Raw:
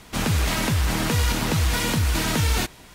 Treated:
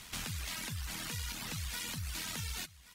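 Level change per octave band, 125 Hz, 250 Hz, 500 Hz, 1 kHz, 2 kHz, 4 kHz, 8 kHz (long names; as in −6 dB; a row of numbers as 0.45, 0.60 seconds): −20.0, −22.5, −25.0, −20.0, −15.5, −13.0, −12.0 decibels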